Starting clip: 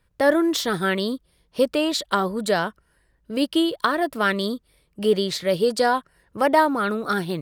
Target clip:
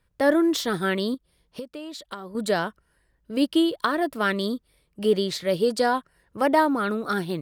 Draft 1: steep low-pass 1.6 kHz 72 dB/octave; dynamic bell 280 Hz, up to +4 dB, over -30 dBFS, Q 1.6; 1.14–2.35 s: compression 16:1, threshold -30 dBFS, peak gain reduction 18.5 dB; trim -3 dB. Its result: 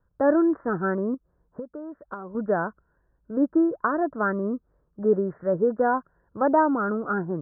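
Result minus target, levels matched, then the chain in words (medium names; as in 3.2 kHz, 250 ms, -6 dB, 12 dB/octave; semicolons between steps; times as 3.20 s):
2 kHz band -3.0 dB
dynamic bell 280 Hz, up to +4 dB, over -30 dBFS, Q 1.6; 1.14–2.35 s: compression 16:1, threshold -30 dBFS, peak gain reduction 18.5 dB; trim -3 dB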